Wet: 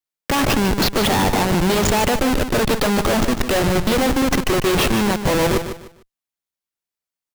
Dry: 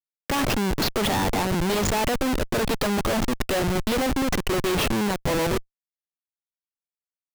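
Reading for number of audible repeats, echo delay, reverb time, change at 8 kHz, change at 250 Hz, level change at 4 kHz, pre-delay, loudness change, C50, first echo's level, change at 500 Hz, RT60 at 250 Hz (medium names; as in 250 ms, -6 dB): 3, 150 ms, no reverb, +6.0 dB, +6.0 dB, +6.0 dB, no reverb, +6.0 dB, no reverb, -9.5 dB, +6.0 dB, no reverb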